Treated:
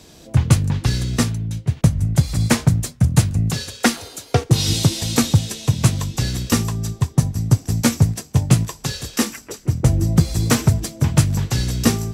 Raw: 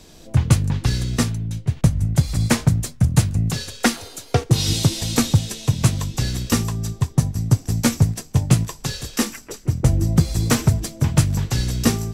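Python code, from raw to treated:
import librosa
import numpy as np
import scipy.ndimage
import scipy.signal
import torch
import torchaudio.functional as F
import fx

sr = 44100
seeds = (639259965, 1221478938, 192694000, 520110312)

y = scipy.signal.sosfilt(scipy.signal.butter(2, 48.0, 'highpass', fs=sr, output='sos'), x)
y = y * 10.0 ** (1.5 / 20.0)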